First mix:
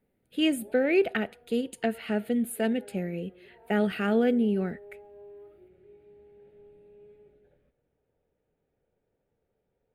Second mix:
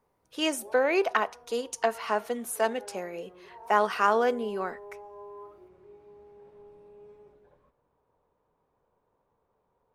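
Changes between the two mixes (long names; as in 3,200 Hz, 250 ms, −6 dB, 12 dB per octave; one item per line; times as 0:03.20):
speech: add high-pass filter 460 Hz 12 dB per octave
master: remove phaser with its sweep stopped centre 2,500 Hz, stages 4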